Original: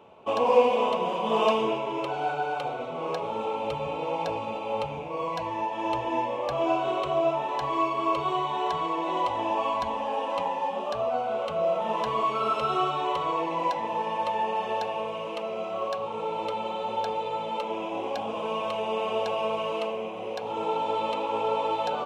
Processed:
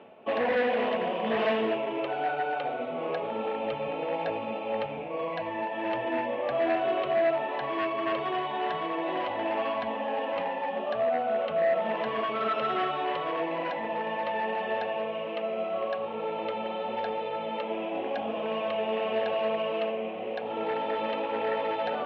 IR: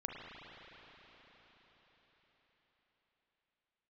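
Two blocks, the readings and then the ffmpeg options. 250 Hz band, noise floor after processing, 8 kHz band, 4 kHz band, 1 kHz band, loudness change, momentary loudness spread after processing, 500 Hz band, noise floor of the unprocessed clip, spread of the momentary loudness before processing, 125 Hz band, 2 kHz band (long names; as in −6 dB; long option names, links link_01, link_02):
0.0 dB, −35 dBFS, can't be measured, −2.5 dB, −4.0 dB, −1.5 dB, 6 LU, −0.5 dB, −34 dBFS, 6 LU, −5.0 dB, +3.5 dB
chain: -af "areverse,acompressor=mode=upward:threshold=-33dB:ratio=2.5,areverse,asoftclip=type=hard:threshold=-23dB,highpass=130,equalizer=frequency=140:width_type=q:width=4:gain=-4,equalizer=frequency=240:width_type=q:width=4:gain=6,equalizer=frequency=660:width_type=q:width=4:gain=4,equalizer=frequency=1000:width_type=q:width=4:gain=-8,equalizer=frequency=1800:width_type=q:width=4:gain=9,lowpass=frequency=3500:width=0.5412,lowpass=frequency=3500:width=1.3066,volume=-1dB"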